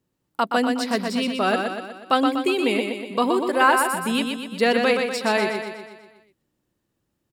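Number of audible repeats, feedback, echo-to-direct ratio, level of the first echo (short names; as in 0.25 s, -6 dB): 6, 54%, -3.5 dB, -5.0 dB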